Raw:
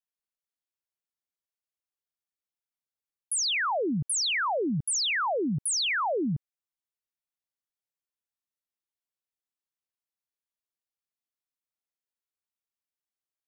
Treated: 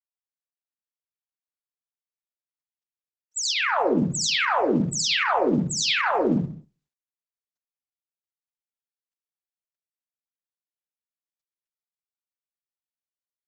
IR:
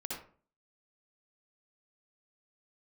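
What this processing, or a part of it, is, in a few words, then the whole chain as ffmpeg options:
speakerphone in a meeting room: -filter_complex "[0:a]asettb=1/sr,asplit=3[link_01][link_02][link_03];[link_01]atrim=end=3.334[link_04];[link_02]atrim=start=3.33:end=4.48,asetpts=PTS-STARTPTS,afade=type=in:duration=0.004:curve=qsin,afade=type=out:start_time=1.146:duration=0.004:curve=qsin,highshelf=frequency=9900:gain=4[link_05];[link_03]atrim=start=4.476[link_06];[link_04][link_05]acrossfade=duration=0.004:curve1=hsin:curve2=qsin[link_07];[link_07][link_06]acrossfade=duration=0.004:curve1=qsin:curve2=hsin[link_08];[1:a]atrim=start_sample=2205[link_09];[link_08][link_09]afir=irnorm=-1:irlink=0,asplit=2[link_10][link_11];[link_11]adelay=190,highpass=300,lowpass=3400,asoftclip=type=hard:threshold=-24.5dB,volume=-25dB[link_12];[link_10][link_12]amix=inputs=2:normalize=0,dynaudnorm=framelen=170:gausssize=5:maxgain=10dB,agate=range=-13dB:threshold=-37dB:ratio=16:detection=peak,volume=-5.5dB" -ar 48000 -c:a libopus -b:a 12k

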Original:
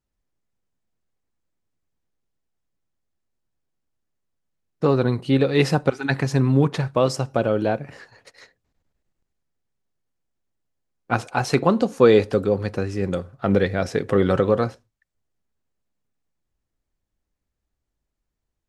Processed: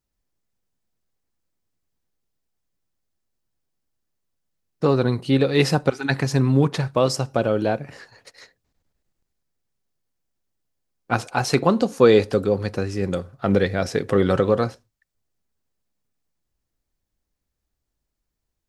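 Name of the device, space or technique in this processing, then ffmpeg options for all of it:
presence and air boost: -af "equalizer=frequency=4800:width_type=o:width=0.77:gain=3,highshelf=frequency=9000:gain=7"

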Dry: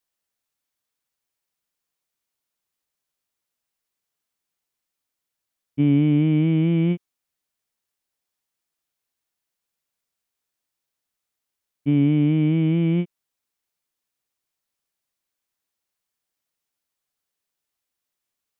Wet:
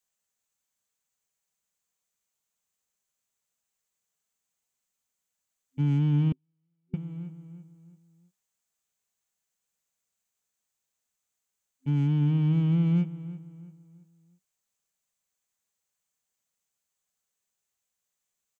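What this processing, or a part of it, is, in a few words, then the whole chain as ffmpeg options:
one-band saturation: -filter_complex "[0:a]acrossover=split=310|2900[link_01][link_02][link_03];[link_02]asoftclip=type=tanh:threshold=-38dB[link_04];[link_01][link_04][link_03]amix=inputs=3:normalize=0,equalizer=frequency=190:width=7.5:gain=4,asplit=2[link_05][link_06];[link_06]adelay=335,lowpass=frequency=2500:poles=1,volume=-15dB,asplit=2[link_07][link_08];[link_08]adelay=335,lowpass=frequency=2500:poles=1,volume=0.39,asplit=2[link_09][link_10];[link_10]adelay=335,lowpass=frequency=2500:poles=1,volume=0.39,asplit=2[link_11][link_12];[link_12]adelay=335,lowpass=frequency=2500:poles=1,volume=0.39[link_13];[link_05][link_07][link_09][link_11][link_13]amix=inputs=5:normalize=0,asettb=1/sr,asplit=3[link_14][link_15][link_16];[link_14]atrim=end=6.324[link_17];[link_15]atrim=start=6.32:end=6.94,asetpts=PTS-STARTPTS,afade=type=in:duration=0.004:curve=qsin,afade=type=out:start_time=0.616:duration=0.004:curve=qsin,agate=range=-54dB:threshold=-6dB:ratio=16:detection=peak[link_18];[link_16]atrim=start=6.936[link_19];[link_17][link_18]acrossfade=duration=0.004:curve1=hsin:curve2=qsin[link_20];[link_20][link_19]acrossfade=duration=0.004:curve1=qsin:curve2=hsin,superequalizer=6b=0.398:15b=2.51,volume=-2.5dB"

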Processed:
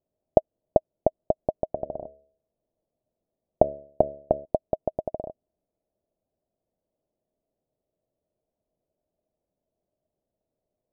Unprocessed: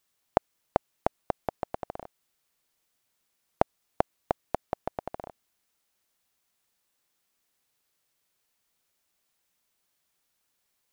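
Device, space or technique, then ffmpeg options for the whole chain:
under water: -filter_complex "[0:a]asettb=1/sr,asplit=3[link_01][link_02][link_03];[link_01]atrim=end=1.644[link_04];[link_02]atrim=start=1.64:end=4.45,asetpts=PTS-STARTPTS,afade=type=in:duration=0.004:curve=qsin,afade=type=out:start_time=2.806:duration=0.004:curve=qsin,bandreject=frequency=71.47:width_type=h:width=4,bandreject=frequency=142.94:width_type=h:width=4,bandreject=frequency=214.41:width_type=h:width=4,bandreject=frequency=285.88:width_type=h:width=4,bandreject=frequency=357.35:width_type=h:width=4,bandreject=frequency=428.82:width_type=h:width=4,bandreject=frequency=500.29:width_type=h:width=4,bandreject=frequency=571.76:width_type=h:width=4,bandreject=frequency=643.23:width_type=h:width=4[link_05];[link_03]atrim=start=4.446[link_06];[link_04][link_05]acrossfade=duration=0.004:curve1=hsin:curve2=qsin[link_07];[link_07][link_06]acrossfade=duration=0.004:curve1=qsin:curve2=hsin,lowpass=frequency=600:width=0.5412,lowpass=frequency=600:width=1.3066,equalizer=frequency=630:width_type=o:width=0.25:gain=12,volume=5dB"

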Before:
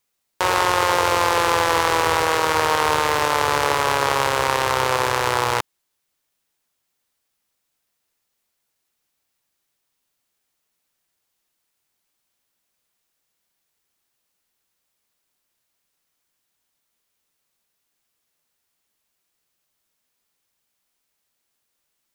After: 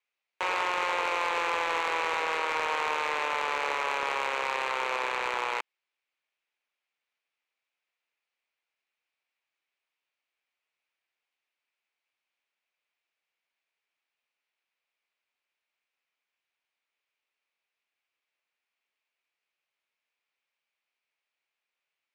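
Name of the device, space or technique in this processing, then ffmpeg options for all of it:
intercom: -af "highpass=470,lowpass=3600,equalizer=frequency=2400:width_type=o:width=0.56:gain=9.5,asoftclip=type=tanh:threshold=-10.5dB,volume=-8.5dB"

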